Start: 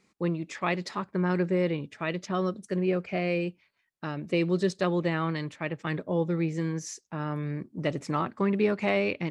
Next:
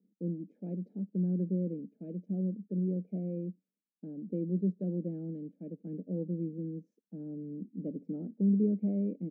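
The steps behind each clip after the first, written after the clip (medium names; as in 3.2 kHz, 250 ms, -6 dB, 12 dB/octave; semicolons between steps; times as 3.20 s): elliptic band-pass 190–440 Hz, stop band 50 dB; comb 1.3 ms, depth 75%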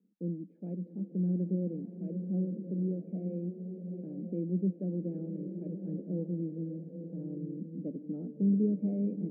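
distance through air 300 m; swelling reverb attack 1090 ms, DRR 6 dB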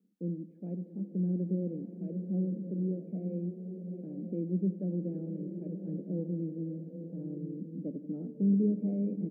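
feedback delay 86 ms, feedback 55%, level -16 dB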